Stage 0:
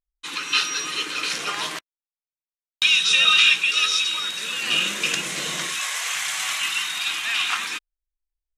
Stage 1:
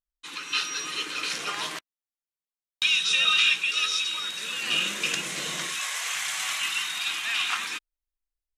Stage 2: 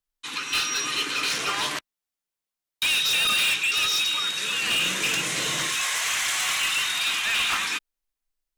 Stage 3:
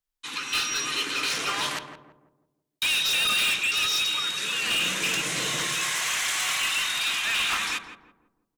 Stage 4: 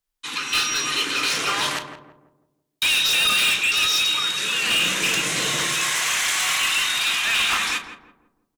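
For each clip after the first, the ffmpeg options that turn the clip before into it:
-af "dynaudnorm=f=450:g=3:m=1.58,volume=0.422"
-af "acontrast=41,afreqshift=-17,volume=10.6,asoftclip=hard,volume=0.0944"
-filter_complex "[0:a]asplit=2[s0][s1];[s1]adelay=167,lowpass=f=840:p=1,volume=0.531,asplit=2[s2][s3];[s3]adelay=167,lowpass=f=840:p=1,volume=0.46,asplit=2[s4][s5];[s5]adelay=167,lowpass=f=840:p=1,volume=0.46,asplit=2[s6][s7];[s7]adelay=167,lowpass=f=840:p=1,volume=0.46,asplit=2[s8][s9];[s9]adelay=167,lowpass=f=840:p=1,volume=0.46,asplit=2[s10][s11];[s11]adelay=167,lowpass=f=840:p=1,volume=0.46[s12];[s0][s2][s4][s6][s8][s10][s12]amix=inputs=7:normalize=0,volume=0.841"
-filter_complex "[0:a]asplit=2[s0][s1];[s1]adelay=35,volume=0.251[s2];[s0][s2]amix=inputs=2:normalize=0,volume=1.68"

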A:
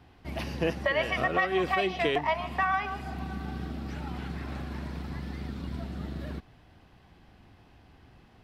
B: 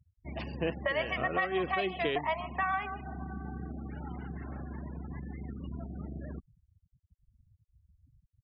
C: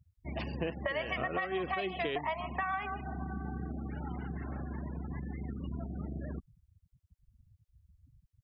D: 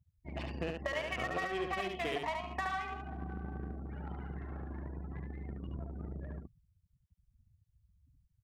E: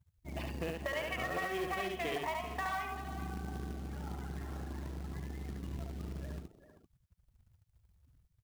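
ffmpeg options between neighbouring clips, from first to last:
-af "afftfilt=real='re*gte(hypot(re,im),0.0126)':imag='im*gte(hypot(re,im),0.0126)':win_size=1024:overlap=0.75,volume=0.631"
-af "acompressor=threshold=0.0251:ratio=5,volume=1.19"
-filter_complex "[0:a]asplit=2[s0][s1];[s1]acrusher=bits=4:mix=0:aa=0.5,volume=0.531[s2];[s0][s2]amix=inputs=2:normalize=0,aecho=1:1:72:0.631,volume=0.473"
-filter_complex "[0:a]asoftclip=type=tanh:threshold=0.0376,asplit=2[s0][s1];[s1]adelay=390,highpass=300,lowpass=3400,asoftclip=type=hard:threshold=0.0119,volume=0.316[s2];[s0][s2]amix=inputs=2:normalize=0,acrusher=bits=4:mode=log:mix=0:aa=0.000001,volume=1.12"

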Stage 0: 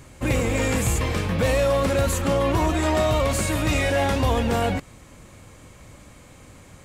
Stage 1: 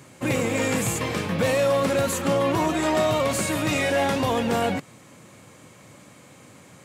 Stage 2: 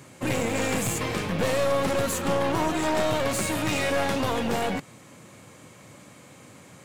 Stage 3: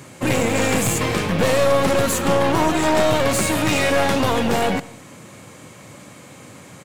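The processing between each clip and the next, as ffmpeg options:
-af "highpass=f=120:w=0.5412,highpass=f=120:w=1.3066"
-af "aeval=exprs='clip(val(0),-1,0.0376)':c=same"
-af "aecho=1:1:77|154|231|308:0.0891|0.0508|0.029|0.0165,volume=2.24"

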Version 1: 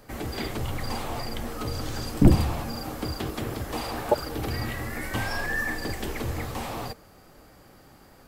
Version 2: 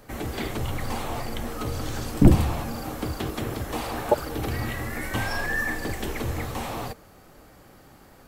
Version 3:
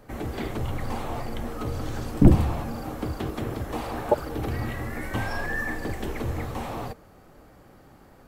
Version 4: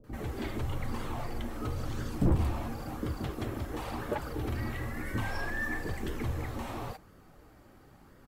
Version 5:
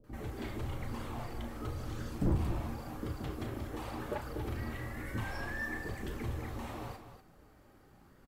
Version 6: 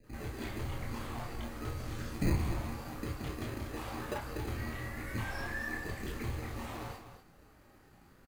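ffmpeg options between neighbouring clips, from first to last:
-af "bandreject=f=4800:w=14,volume=1.19"
-af "highshelf=f=2100:g=-8"
-filter_complex "[0:a]asoftclip=type=tanh:threshold=0.158,acrossover=split=610[s0][s1];[s1]adelay=40[s2];[s0][s2]amix=inputs=2:normalize=0,flanger=delay=0.6:depth=2.7:regen=-52:speed=0.98:shape=sinusoidal"
-af "aecho=1:1:34.99|242:0.355|0.316,volume=0.562"
-filter_complex "[0:a]acrossover=split=600[s0][s1];[s0]acrusher=samples=20:mix=1:aa=0.000001[s2];[s1]asplit=2[s3][s4];[s4]adelay=24,volume=0.75[s5];[s3][s5]amix=inputs=2:normalize=0[s6];[s2][s6]amix=inputs=2:normalize=0"

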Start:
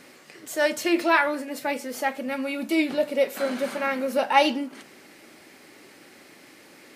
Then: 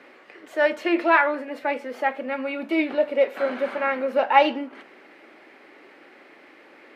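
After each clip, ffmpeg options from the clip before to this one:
-filter_complex "[0:a]acrossover=split=270 3000:gain=0.1 1 0.0631[s0][s1][s2];[s0][s1][s2]amix=inputs=3:normalize=0,volume=1.41"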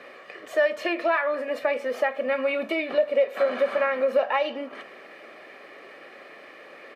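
-af "acompressor=threshold=0.0562:ratio=6,aecho=1:1:1.7:0.55,volume=1.5"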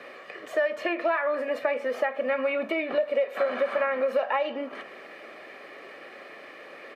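-filter_complex "[0:a]acrossover=split=630|2700[s0][s1][s2];[s0]acompressor=threshold=0.0316:ratio=4[s3];[s1]acompressor=threshold=0.0501:ratio=4[s4];[s2]acompressor=threshold=0.00251:ratio=4[s5];[s3][s4][s5]amix=inputs=3:normalize=0,volume=1.12"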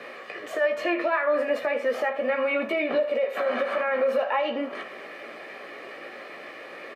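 -af "alimiter=limit=0.0891:level=0:latency=1:release=25,aecho=1:1:17|78:0.501|0.2,volume=1.41"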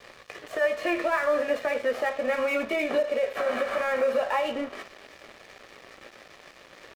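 -af "aeval=exprs='sgn(val(0))*max(abs(val(0))-0.00944,0)':c=same"

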